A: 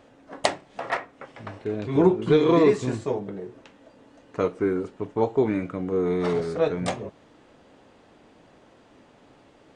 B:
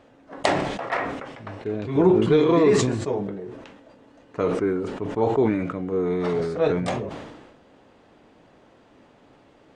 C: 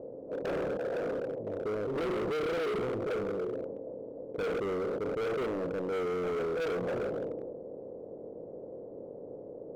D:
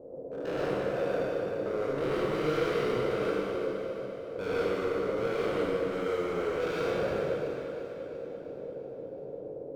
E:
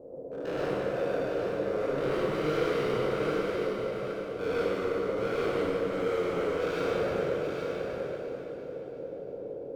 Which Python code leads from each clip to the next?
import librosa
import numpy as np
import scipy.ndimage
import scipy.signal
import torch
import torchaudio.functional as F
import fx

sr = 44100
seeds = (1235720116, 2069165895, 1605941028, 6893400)

y1 = fx.high_shelf(x, sr, hz=5900.0, db=-6.5)
y1 = fx.sustainer(y1, sr, db_per_s=44.0)
y2 = fx.bin_compress(y1, sr, power=0.6)
y2 = fx.ladder_lowpass(y2, sr, hz=570.0, resonance_pct=70)
y2 = np.clip(10.0 ** (28.0 / 20.0) * y2, -1.0, 1.0) / 10.0 ** (28.0 / 20.0)
y2 = y2 * librosa.db_to_amplitude(-2.5)
y3 = fx.spec_trails(y2, sr, decay_s=2.42)
y3 = fx.echo_feedback(y3, sr, ms=343, feedback_pct=59, wet_db=-11.0)
y3 = fx.rev_gated(y3, sr, seeds[0], gate_ms=170, shape='rising', drr_db=-3.5)
y3 = y3 * librosa.db_to_amplitude(-6.0)
y4 = y3 + 10.0 ** (-6.0 / 20.0) * np.pad(y3, (int(818 * sr / 1000.0), 0))[:len(y3)]